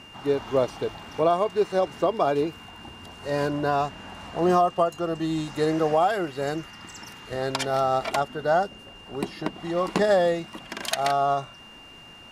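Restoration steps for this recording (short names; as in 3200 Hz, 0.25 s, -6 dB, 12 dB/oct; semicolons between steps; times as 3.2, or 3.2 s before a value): notch 2800 Hz, Q 30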